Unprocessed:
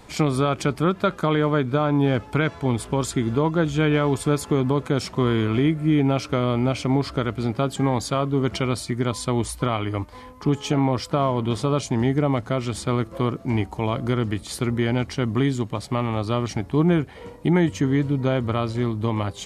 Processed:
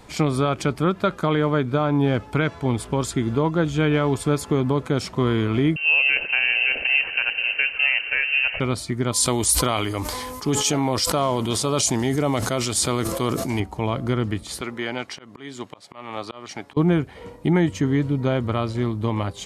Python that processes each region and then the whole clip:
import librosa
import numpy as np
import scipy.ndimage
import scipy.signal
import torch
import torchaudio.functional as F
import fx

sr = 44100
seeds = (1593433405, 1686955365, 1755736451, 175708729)

y = fx.chain(x, sr, fx.echo_swell(ms=80, loudest=5, wet_db=-18),
    fx.freq_invert(carrier_hz=2900), at=(5.76, 8.6))
y = fx.chain(y, sr, fx.bass_treble(bass_db=-5, treble_db=15),
    fx.sustainer(db_per_s=24.0), at=(9.12, 13.6))
y = fx.chain(y, sr, fx.weighting(curve='A'),
    fx.auto_swell(attack_ms=262.0), at=(14.61, 16.77))